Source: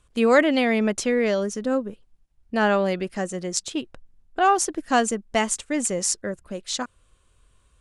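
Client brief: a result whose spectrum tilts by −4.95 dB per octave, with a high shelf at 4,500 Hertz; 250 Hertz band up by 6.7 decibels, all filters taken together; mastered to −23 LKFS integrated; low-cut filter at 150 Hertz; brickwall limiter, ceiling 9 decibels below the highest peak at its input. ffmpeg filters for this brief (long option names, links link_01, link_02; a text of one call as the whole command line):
ffmpeg -i in.wav -af "highpass=150,equalizer=frequency=250:width_type=o:gain=8.5,highshelf=frequency=4500:gain=-7,volume=0.5dB,alimiter=limit=-12.5dB:level=0:latency=1" out.wav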